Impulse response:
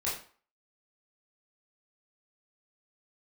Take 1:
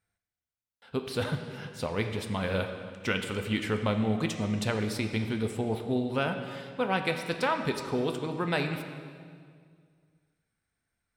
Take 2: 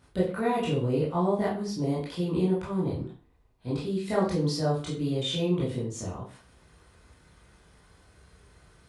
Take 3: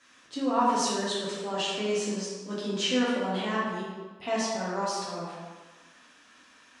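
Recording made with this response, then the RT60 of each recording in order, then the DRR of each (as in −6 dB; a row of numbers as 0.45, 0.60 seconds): 2; 2.0, 0.45, 1.3 seconds; 5.5, −8.0, −8.0 decibels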